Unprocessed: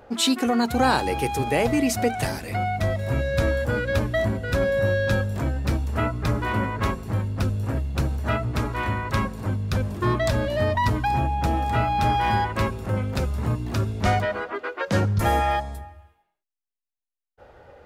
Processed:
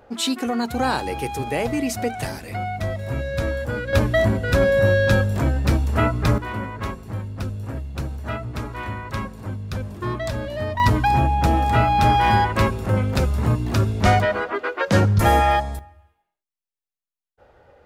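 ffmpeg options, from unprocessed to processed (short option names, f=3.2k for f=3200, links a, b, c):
-af "asetnsamples=n=441:p=0,asendcmd='3.93 volume volume 5dB;6.38 volume volume -4dB;10.8 volume volume 5dB;15.79 volume volume -4dB',volume=-2dB"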